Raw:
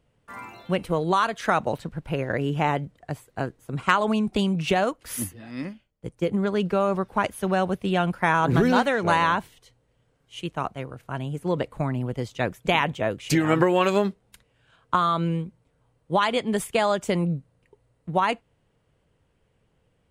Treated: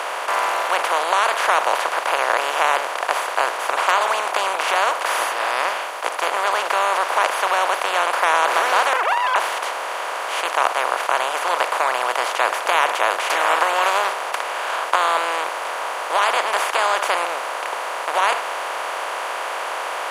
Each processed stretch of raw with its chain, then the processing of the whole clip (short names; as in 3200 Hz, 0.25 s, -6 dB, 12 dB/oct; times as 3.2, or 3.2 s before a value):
8.93–9.36 sine-wave speech + Doppler distortion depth 0.18 ms
whole clip: per-bin compression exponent 0.2; HPF 590 Hz 24 dB/oct; high shelf 11000 Hz -4.5 dB; gain -3 dB